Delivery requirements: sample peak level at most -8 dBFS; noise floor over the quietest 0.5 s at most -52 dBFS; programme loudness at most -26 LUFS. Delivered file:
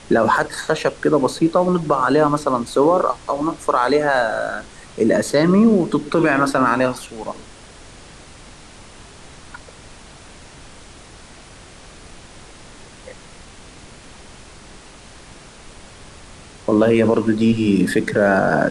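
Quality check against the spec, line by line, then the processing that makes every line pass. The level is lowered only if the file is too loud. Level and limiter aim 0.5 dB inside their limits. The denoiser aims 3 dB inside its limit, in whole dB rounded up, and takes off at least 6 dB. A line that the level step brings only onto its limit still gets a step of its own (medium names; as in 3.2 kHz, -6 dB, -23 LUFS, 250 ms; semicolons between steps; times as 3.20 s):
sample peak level -5.0 dBFS: fail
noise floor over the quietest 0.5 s -42 dBFS: fail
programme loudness -17.5 LUFS: fail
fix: noise reduction 6 dB, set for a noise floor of -42 dBFS; trim -9 dB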